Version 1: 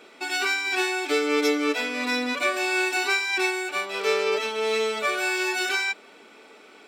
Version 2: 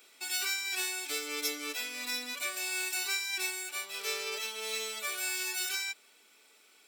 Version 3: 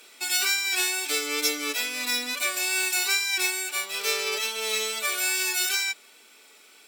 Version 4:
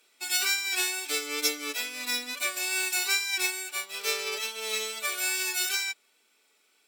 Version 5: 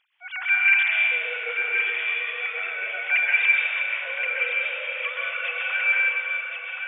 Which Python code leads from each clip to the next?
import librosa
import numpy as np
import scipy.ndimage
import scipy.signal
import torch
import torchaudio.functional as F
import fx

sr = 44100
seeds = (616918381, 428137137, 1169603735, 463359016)

y1 = scipy.signal.lfilter([1.0, -0.9], [1.0], x)
y1 = fx.rider(y1, sr, range_db=10, speed_s=2.0)
y1 = fx.high_shelf(y1, sr, hz=11000.0, db=9.0)
y1 = F.gain(torch.from_numpy(y1), -1.0).numpy()
y2 = fx.wow_flutter(y1, sr, seeds[0], rate_hz=2.1, depth_cents=18.0)
y2 = F.gain(torch.from_numpy(y2), 8.5).numpy()
y3 = fx.upward_expand(y2, sr, threshold_db=-47.0, expansion=1.5)
y3 = F.gain(torch.from_numpy(y3), -1.0).numpy()
y4 = fx.sine_speech(y3, sr)
y4 = fx.echo_feedback(y4, sr, ms=1075, feedback_pct=26, wet_db=-6)
y4 = fx.rev_plate(y4, sr, seeds[1], rt60_s=2.3, hf_ratio=1.0, predelay_ms=110, drr_db=-4.0)